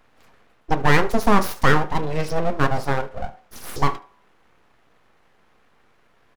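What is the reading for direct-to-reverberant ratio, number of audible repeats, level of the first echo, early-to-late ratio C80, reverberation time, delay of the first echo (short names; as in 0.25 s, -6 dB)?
10.0 dB, 1, -21.0 dB, 22.0 dB, 0.45 s, 73 ms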